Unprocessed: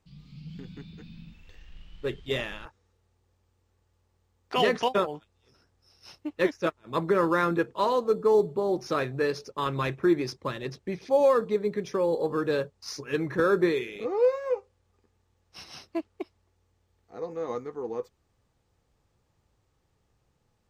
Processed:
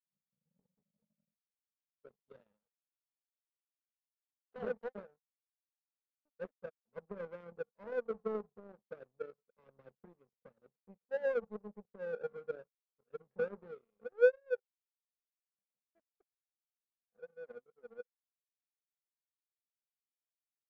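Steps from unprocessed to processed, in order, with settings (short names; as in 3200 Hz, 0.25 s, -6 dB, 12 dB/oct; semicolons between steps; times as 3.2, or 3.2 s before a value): double band-pass 320 Hz, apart 1.2 oct; power-law curve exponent 2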